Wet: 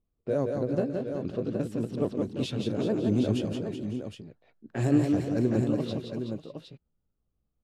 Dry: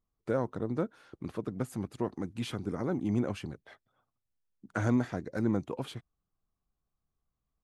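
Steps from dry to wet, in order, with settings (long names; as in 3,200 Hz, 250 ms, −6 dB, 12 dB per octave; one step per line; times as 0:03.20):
pitch shifter swept by a sawtooth +3.5 semitones, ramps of 1,023 ms
low-pass that shuts in the quiet parts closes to 1,800 Hz, open at −28 dBFS
flat-topped bell 1,300 Hz −10 dB
multi-tap delay 155/172/376/547/590/764 ms −16.5/−5/−9.5/−18/−19/−8 dB
level +5 dB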